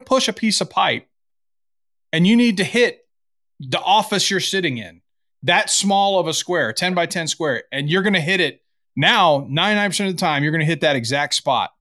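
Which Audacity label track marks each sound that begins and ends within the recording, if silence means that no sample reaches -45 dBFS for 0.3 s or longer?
2.130000	2.970000	sound
3.600000	4.980000	sound
5.430000	8.560000	sound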